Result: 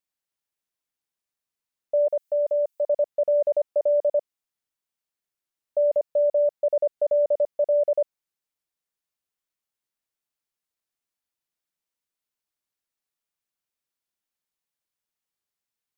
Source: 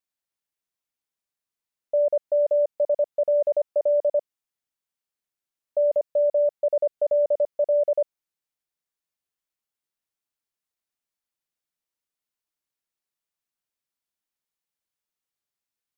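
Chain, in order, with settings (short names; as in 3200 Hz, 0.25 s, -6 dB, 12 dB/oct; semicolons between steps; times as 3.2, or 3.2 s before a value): 2.07–2.86 tilt +3 dB/oct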